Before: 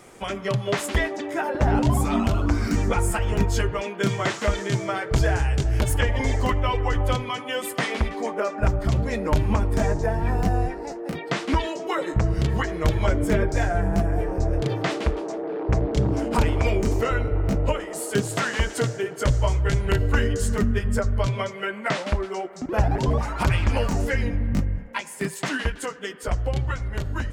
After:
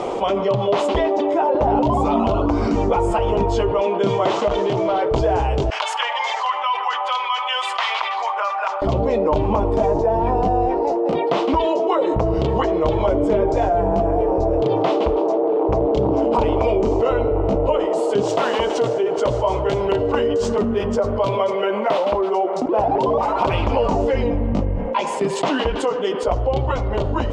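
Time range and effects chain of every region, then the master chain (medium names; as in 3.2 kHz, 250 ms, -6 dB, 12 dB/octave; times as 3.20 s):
4.48–5.02 s: overload inside the chain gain 26 dB + peaking EQ 9.4 kHz -6 dB 0.89 oct
5.70–8.82 s: high-pass 1.1 kHz 24 dB/octave + distance through air 55 m
18.23–23.53 s: high-pass 230 Hz 6 dB/octave + careless resampling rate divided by 3×, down none, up hold
whole clip: FFT filter 150 Hz 0 dB, 490 Hz +14 dB, 1 kHz +13 dB, 1.7 kHz -6 dB, 3 kHz +5 dB, 7.5 kHz -8 dB, 13 kHz -29 dB; level flattener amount 70%; trim -8 dB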